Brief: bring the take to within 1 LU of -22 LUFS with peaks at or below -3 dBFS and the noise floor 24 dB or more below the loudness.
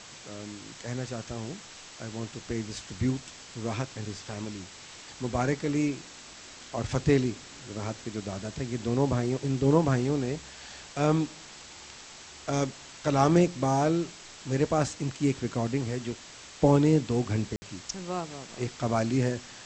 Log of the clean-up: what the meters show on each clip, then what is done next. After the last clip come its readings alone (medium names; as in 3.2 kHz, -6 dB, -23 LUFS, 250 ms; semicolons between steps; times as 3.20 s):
dropouts 1; longest dropout 60 ms; noise floor -47 dBFS; noise floor target -53 dBFS; loudness -29.0 LUFS; peak level -8.5 dBFS; loudness target -22.0 LUFS
-> interpolate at 17.56 s, 60 ms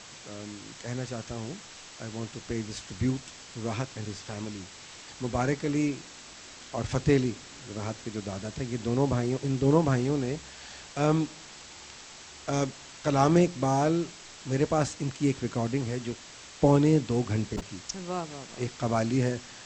dropouts 0; noise floor -47 dBFS; noise floor target -53 dBFS
-> noise reduction 6 dB, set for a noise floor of -47 dBFS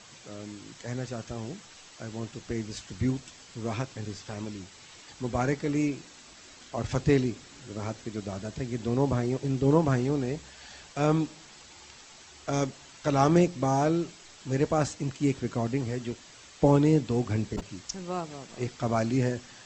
noise floor -51 dBFS; noise floor target -53 dBFS
-> noise reduction 6 dB, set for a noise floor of -51 dBFS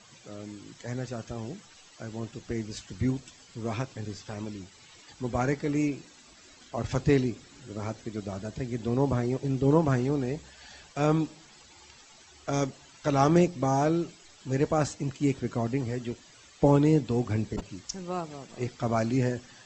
noise floor -55 dBFS; loudness -29.0 LUFS; peak level -8.5 dBFS; loudness target -22.0 LUFS
-> trim +7 dB; peak limiter -3 dBFS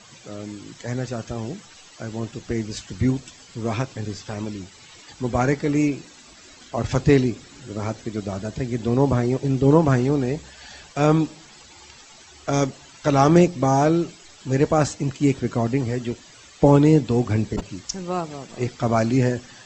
loudness -22.0 LUFS; peak level -3.0 dBFS; noise floor -48 dBFS